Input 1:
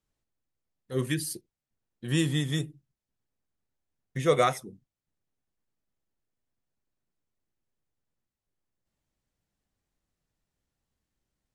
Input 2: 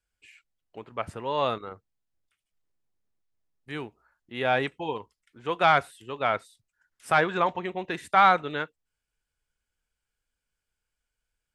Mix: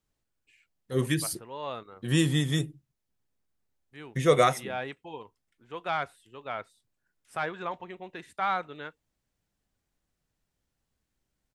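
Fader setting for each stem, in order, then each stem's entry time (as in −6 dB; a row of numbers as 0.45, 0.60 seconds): +2.0, −10.0 decibels; 0.00, 0.25 seconds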